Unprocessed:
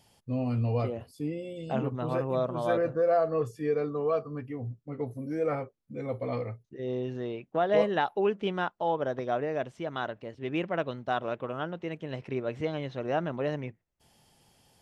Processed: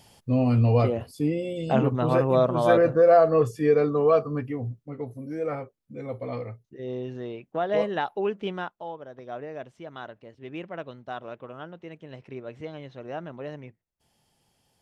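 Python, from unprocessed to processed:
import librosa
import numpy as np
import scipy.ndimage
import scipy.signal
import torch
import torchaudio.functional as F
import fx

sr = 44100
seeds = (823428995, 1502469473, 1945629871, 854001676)

y = fx.gain(x, sr, db=fx.line((4.38, 8.0), (5.03, -0.5), (8.53, -0.5), (9.07, -12.5), (9.38, -6.0)))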